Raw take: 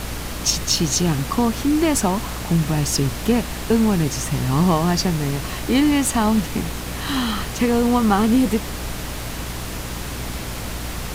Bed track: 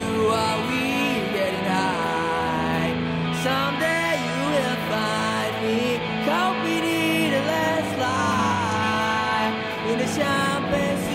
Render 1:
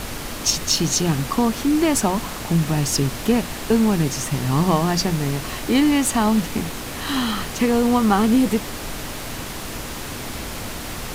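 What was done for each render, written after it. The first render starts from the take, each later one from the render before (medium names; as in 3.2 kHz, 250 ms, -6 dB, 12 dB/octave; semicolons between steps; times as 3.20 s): hum notches 60/120/180 Hz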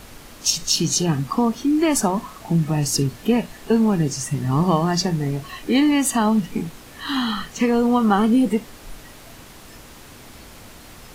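noise print and reduce 12 dB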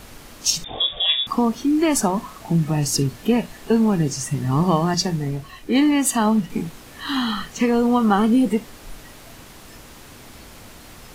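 0.64–1.27 s: frequency inversion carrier 3.6 kHz; 4.94–6.50 s: three bands expanded up and down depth 40%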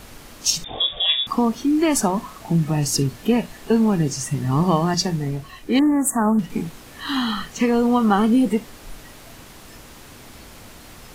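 5.79–6.39 s: elliptic band-stop 1.6–7.6 kHz, stop band 60 dB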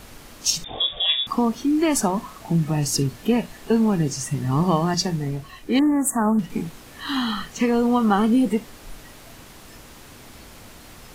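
trim -1.5 dB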